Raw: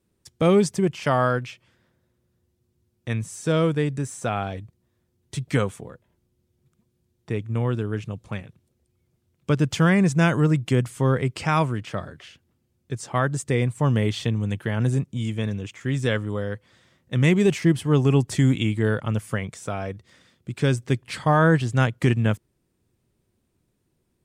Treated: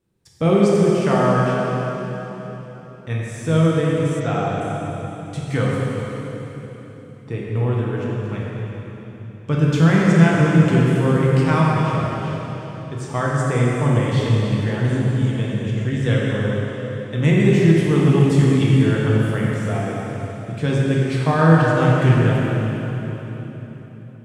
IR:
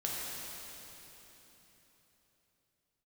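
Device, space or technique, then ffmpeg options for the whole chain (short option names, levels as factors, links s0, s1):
swimming-pool hall: -filter_complex "[1:a]atrim=start_sample=2205[s0];[0:a][s0]afir=irnorm=-1:irlink=0,highshelf=f=4500:g=-6,asplit=3[s1][s2][s3];[s1]afade=t=out:st=4.19:d=0.02[s4];[s2]lowpass=f=6100:w=0.5412,lowpass=f=6100:w=1.3066,afade=t=in:st=4.19:d=0.02,afade=t=out:st=4.6:d=0.02[s5];[s3]afade=t=in:st=4.6:d=0.02[s6];[s4][s5][s6]amix=inputs=3:normalize=0"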